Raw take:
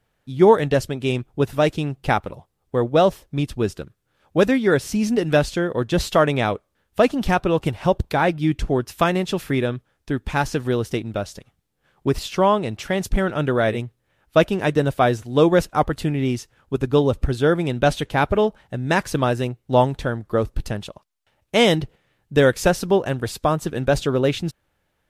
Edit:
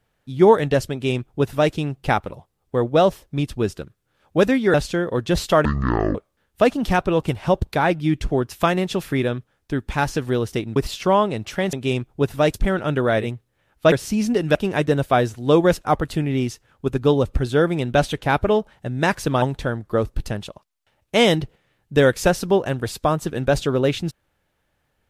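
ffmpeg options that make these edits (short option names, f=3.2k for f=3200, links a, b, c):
-filter_complex "[0:a]asplit=10[a][b][c][d][e][f][g][h][i][j];[a]atrim=end=4.742[k];[b]atrim=start=5.368:end=6.284[l];[c]atrim=start=6.28:end=6.53,asetpts=PTS-STARTPTS,asetrate=22050,aresample=44100[m];[d]atrim=start=6.526:end=11.142[n];[e]atrim=start=12.078:end=13.052[o];[f]atrim=start=0.918:end=1.732[p];[g]atrim=start=13.048:end=14.432[q];[h]atrim=start=4.738:end=5.372[r];[i]atrim=start=14.428:end=19.302[s];[j]atrim=start=19.818[t];[k][l]acrossfade=d=0.004:c1=hsin:c2=hsin[u];[u][m]acrossfade=d=0.004:c1=hsin:c2=hsin[v];[v][n]acrossfade=d=0.004:c1=hsin:c2=hsin[w];[w][o]acrossfade=d=0.004:c1=hsin:c2=hsin[x];[x][p]acrossfade=d=0.004:c1=hsin:c2=hsin[y];[y][q]acrossfade=d=0.004:c1=hsin:c2=hsin[z];[z][r]acrossfade=d=0.004:c1=hsin:c2=hsin[aa];[aa][s]acrossfade=d=0.004:c1=hsin:c2=hsin[ab];[ab][t]acrossfade=d=0.004:c1=hsin:c2=hsin"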